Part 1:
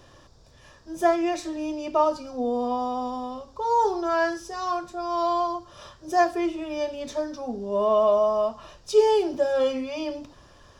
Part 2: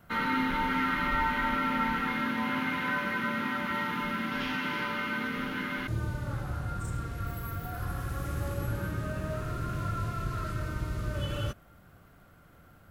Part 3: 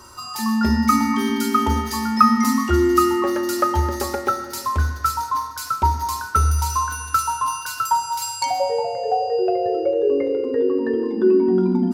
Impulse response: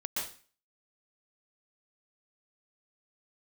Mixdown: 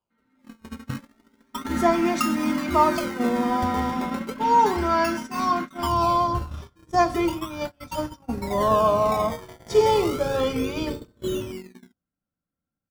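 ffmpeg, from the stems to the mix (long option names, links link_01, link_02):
-filter_complex "[0:a]highpass=64,aecho=1:1:0.9:0.47,adelay=800,volume=2dB,asplit=2[link_01][link_02];[link_02]volume=-22.5dB[link_03];[1:a]equalizer=frequency=170:width=0.57:gain=11.5,bandreject=frequency=50:width_type=h:width=6,bandreject=frequency=100:width_type=h:width=6,bandreject=frequency=150:width_type=h:width=6,bandreject=frequency=200:width_type=h:width=6,aecho=1:1:3.8:0.45,volume=-6.5dB,afade=type=in:start_time=1.49:duration=0.24:silence=0.354813[link_04];[2:a]acrossover=split=2800[link_05][link_06];[link_06]acompressor=threshold=-37dB:ratio=4:attack=1:release=60[link_07];[link_05][link_07]amix=inputs=2:normalize=0,highpass=53,acrusher=samples=22:mix=1:aa=0.000001:lfo=1:lforange=22:lforate=0.34,volume=-12.5dB[link_08];[3:a]atrim=start_sample=2205[link_09];[link_03][link_09]afir=irnorm=-1:irlink=0[link_10];[link_01][link_04][link_08][link_10]amix=inputs=4:normalize=0,agate=range=-31dB:threshold=-27dB:ratio=16:detection=peak"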